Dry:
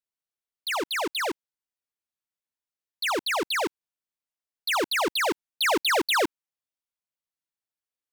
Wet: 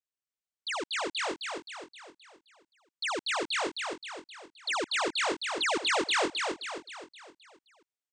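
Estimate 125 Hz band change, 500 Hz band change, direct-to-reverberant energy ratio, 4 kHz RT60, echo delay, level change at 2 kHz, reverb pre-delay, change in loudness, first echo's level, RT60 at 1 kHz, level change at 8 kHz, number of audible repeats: can't be measured, −5.0 dB, no reverb audible, no reverb audible, 262 ms, −3.5 dB, no reverb audible, −5.0 dB, −4.0 dB, no reverb audible, −2.5 dB, 5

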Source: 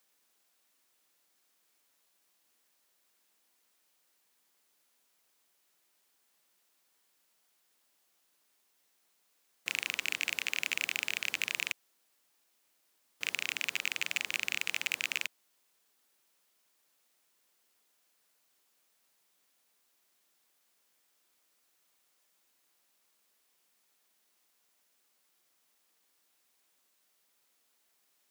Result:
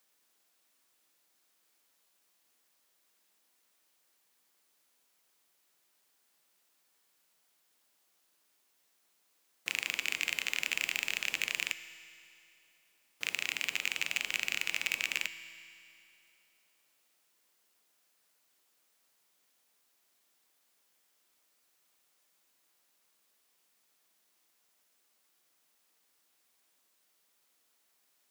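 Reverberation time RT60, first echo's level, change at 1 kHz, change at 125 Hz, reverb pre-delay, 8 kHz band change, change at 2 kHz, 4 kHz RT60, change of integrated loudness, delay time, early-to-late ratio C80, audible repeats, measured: 2.7 s, no echo audible, +0.5 dB, can't be measured, 6 ms, +0.5 dB, +0.5 dB, 2.6 s, +0.5 dB, no echo audible, 13.0 dB, no echo audible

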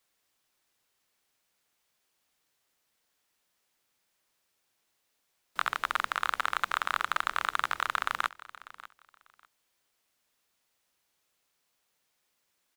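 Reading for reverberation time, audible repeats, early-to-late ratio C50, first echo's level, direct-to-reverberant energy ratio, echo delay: no reverb audible, 2, no reverb audible, −18.0 dB, no reverb audible, 595 ms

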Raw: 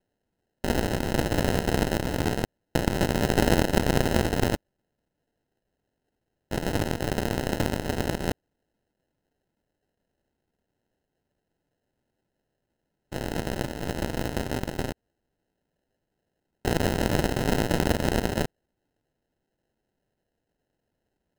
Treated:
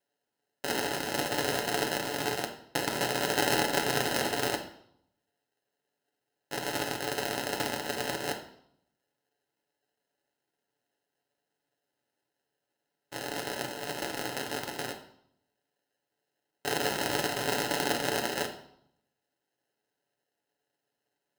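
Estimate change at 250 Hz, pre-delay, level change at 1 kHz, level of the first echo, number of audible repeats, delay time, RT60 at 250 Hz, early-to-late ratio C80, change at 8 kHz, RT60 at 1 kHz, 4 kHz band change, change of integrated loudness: −10.0 dB, 7 ms, −1.0 dB, no echo audible, no echo audible, no echo audible, 0.80 s, 12.5 dB, +1.5 dB, 0.70 s, +2.0 dB, −4.0 dB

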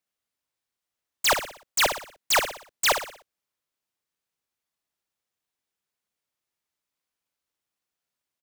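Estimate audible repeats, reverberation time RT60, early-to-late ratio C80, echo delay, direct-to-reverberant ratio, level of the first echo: 4, no reverb audible, no reverb audible, 60 ms, no reverb audible, −8.5 dB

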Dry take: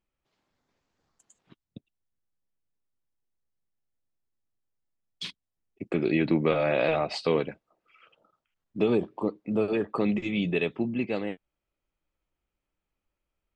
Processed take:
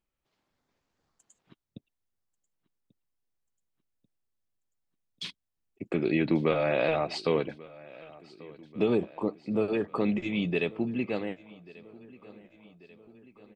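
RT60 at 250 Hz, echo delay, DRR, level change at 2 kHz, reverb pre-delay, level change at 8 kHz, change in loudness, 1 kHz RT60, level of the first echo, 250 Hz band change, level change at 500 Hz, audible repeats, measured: no reverb audible, 1,139 ms, no reverb audible, −1.5 dB, no reverb audible, can't be measured, −1.5 dB, no reverb audible, −21.5 dB, −1.5 dB, −1.5 dB, 3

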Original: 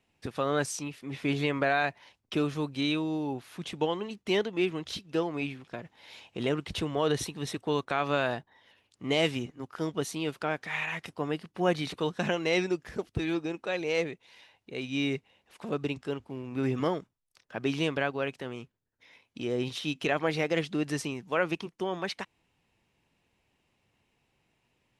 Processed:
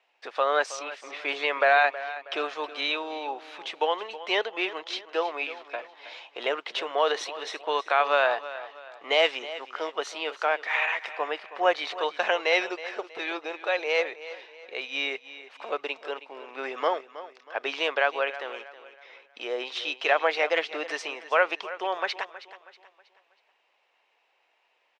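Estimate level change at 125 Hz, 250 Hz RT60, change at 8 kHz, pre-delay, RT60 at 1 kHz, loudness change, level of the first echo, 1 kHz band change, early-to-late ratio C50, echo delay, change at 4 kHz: below −35 dB, no reverb audible, −3.0 dB, no reverb audible, no reverb audible, +3.5 dB, −15.0 dB, +7.5 dB, no reverb audible, 320 ms, +5.0 dB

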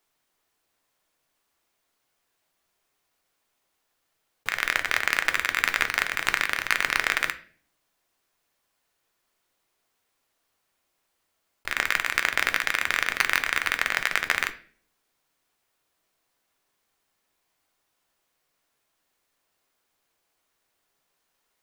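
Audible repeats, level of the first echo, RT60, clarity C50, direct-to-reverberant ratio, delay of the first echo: no echo audible, no echo audible, 0.45 s, 16.0 dB, 8.0 dB, no echo audible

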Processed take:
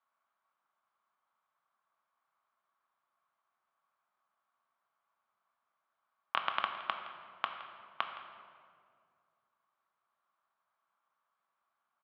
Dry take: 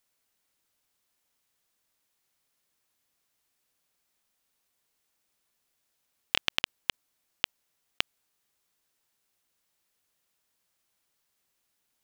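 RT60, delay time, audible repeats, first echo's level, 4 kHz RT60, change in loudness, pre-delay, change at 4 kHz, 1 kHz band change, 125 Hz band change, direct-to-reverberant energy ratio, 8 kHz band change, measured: 2.1 s, 166 ms, 1, −16.0 dB, 1.3 s, −6.5 dB, 3 ms, −12.5 dB, +8.0 dB, below −10 dB, 4.0 dB, below −30 dB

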